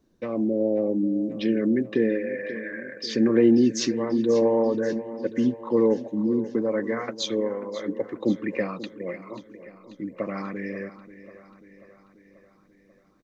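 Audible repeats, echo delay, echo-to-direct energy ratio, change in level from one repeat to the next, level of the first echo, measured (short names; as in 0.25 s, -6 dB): 5, 0.538 s, -13.0 dB, -4.5 dB, -15.0 dB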